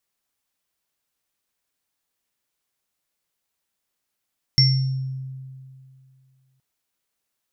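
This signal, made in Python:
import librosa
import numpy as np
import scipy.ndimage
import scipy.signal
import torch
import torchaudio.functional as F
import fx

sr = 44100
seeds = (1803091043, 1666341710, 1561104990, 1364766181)

y = fx.additive_free(sr, length_s=2.02, hz=132.0, level_db=-13.5, upper_db=(-15, 2), decay_s=2.39, upper_decays_s=(0.41, 0.57), upper_hz=(2080.0, 5450.0))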